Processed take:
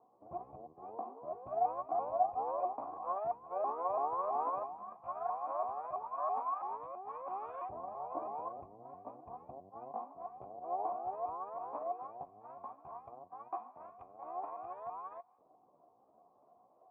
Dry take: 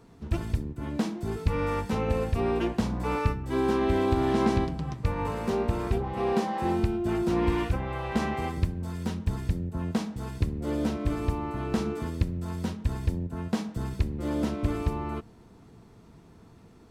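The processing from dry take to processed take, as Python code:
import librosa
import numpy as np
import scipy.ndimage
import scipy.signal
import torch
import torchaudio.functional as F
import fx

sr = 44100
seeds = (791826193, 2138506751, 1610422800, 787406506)

y = fx.pitch_ramps(x, sr, semitones=8.5, every_ms=331)
y = fx.filter_lfo_bandpass(y, sr, shape='saw_up', hz=0.13, low_hz=430.0, high_hz=1800.0, q=0.92)
y = fx.formant_cascade(y, sr, vowel='a')
y = F.gain(torch.from_numpy(y), 7.5).numpy()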